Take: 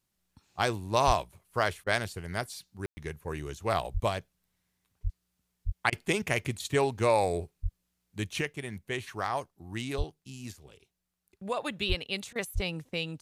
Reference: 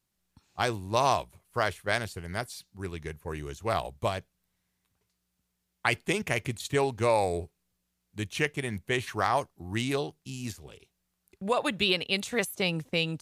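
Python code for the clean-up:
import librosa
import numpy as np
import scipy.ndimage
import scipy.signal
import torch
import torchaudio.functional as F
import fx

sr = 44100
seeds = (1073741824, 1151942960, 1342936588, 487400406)

y = fx.fix_deplosive(x, sr, at_s=(1.06, 3.93, 5.03, 5.65, 7.62, 9.97, 11.88, 12.54))
y = fx.fix_ambience(y, sr, seeds[0], print_start_s=10.91, print_end_s=11.41, start_s=2.86, end_s=2.97)
y = fx.fix_interpolate(y, sr, at_s=(1.84, 5.9, 12.33), length_ms=24.0)
y = fx.fix_level(y, sr, at_s=8.41, step_db=5.5)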